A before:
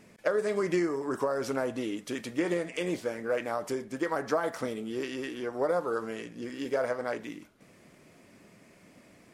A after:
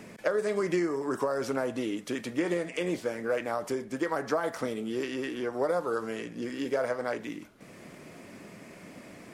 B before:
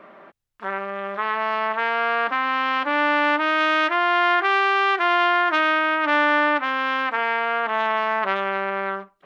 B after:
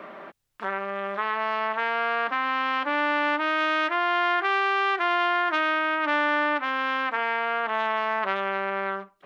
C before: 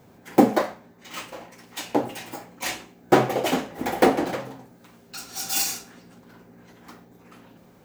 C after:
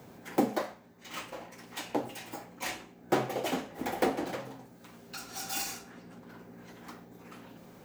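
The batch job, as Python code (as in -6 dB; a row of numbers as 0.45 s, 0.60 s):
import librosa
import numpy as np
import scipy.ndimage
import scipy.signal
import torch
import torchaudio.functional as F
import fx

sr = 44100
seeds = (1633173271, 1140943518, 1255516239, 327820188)

y = fx.band_squash(x, sr, depth_pct=40)
y = y * 10.0 ** (-12 / 20.0) / np.max(np.abs(y))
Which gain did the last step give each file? +0.5 dB, -4.5 dB, -7.5 dB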